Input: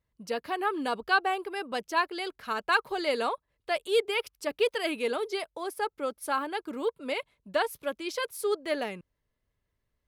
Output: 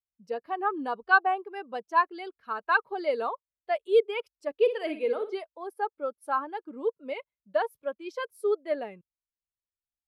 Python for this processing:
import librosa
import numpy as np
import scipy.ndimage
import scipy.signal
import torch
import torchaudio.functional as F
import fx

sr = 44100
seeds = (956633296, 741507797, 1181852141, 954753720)

y = fx.dynamic_eq(x, sr, hz=1000.0, q=0.7, threshold_db=-41.0, ratio=4.0, max_db=3)
y = fx.wow_flutter(y, sr, seeds[0], rate_hz=2.1, depth_cents=27.0)
y = fx.room_flutter(y, sr, wall_m=10.2, rt60_s=0.44, at=(4.65, 5.34), fade=0.02)
y = fx.spectral_expand(y, sr, expansion=1.5)
y = F.gain(torch.from_numpy(y), 1.5).numpy()